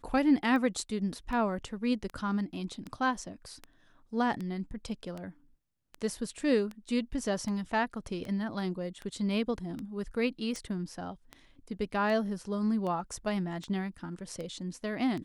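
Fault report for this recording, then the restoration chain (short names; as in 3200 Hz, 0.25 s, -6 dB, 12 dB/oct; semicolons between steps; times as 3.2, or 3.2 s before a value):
tick 78 rpm -26 dBFS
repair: de-click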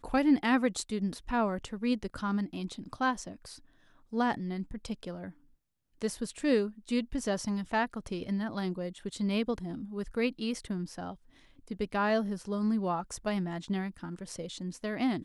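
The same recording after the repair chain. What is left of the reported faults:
none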